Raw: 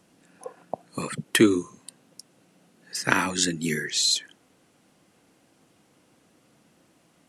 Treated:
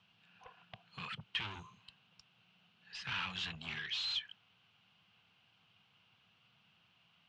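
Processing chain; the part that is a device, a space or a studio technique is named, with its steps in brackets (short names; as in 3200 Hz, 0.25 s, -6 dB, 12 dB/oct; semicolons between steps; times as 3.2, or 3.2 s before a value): bell 190 Hz +5.5 dB 0.67 oct; scooped metal amplifier (tube stage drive 30 dB, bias 0.3; speaker cabinet 76–3500 Hz, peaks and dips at 110 Hz +6 dB, 550 Hz -9 dB, 1900 Hz -8 dB, 2900 Hz +7 dB; passive tone stack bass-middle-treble 10-0-10); gain +2.5 dB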